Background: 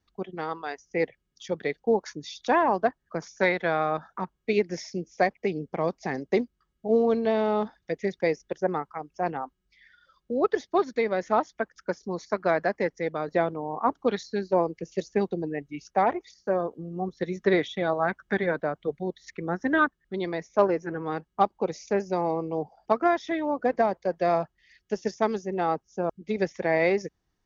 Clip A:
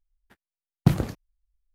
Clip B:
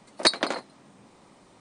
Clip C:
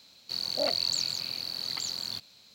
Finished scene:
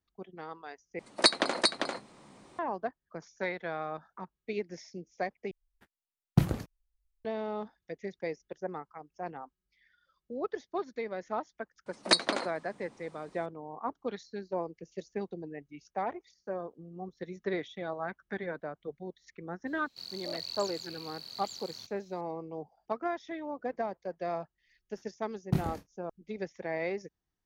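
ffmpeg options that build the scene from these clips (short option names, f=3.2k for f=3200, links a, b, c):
-filter_complex "[2:a]asplit=2[a][b];[1:a]asplit=2[c][d];[0:a]volume=-11dB[e];[a]aecho=1:1:396:0.631[f];[d]aecho=1:1:25|58:0.668|0.133[g];[e]asplit=3[h][i][j];[h]atrim=end=0.994[k];[f]atrim=end=1.6,asetpts=PTS-STARTPTS,volume=-2dB[l];[i]atrim=start=2.586:end=5.514[m];[c]atrim=end=1.74,asetpts=PTS-STARTPTS,volume=-5dB[n];[j]atrim=start=7.246[o];[b]atrim=end=1.6,asetpts=PTS-STARTPTS,volume=-3.5dB,afade=t=in:d=0.004:c=hsin,afade=t=out:st=1.596:d=0.004:c=hsin,adelay=523026S[p];[3:a]atrim=end=2.54,asetpts=PTS-STARTPTS,volume=-11dB,afade=t=in:d=0.004:c=hsin,afade=t=out:st=2.536:d=0.004:c=hsin,adelay=19670[q];[g]atrim=end=1.74,asetpts=PTS-STARTPTS,volume=-11dB,afade=t=in:d=0.004:c=hsin,afade=t=out:st=1.736:d=0.004:c=hsin,adelay=24660[r];[k][l]acrossfade=d=0.004:c1=hsin:c2=hsin[s];[s][m]acrossfade=d=0.004:c1=hsin:c2=hsin[t];[t][n]acrossfade=d=0.004:c1=hsin:c2=hsin[u];[u][o]acrossfade=d=0.004:c1=hsin:c2=hsin[v];[v][p][q][r]amix=inputs=4:normalize=0"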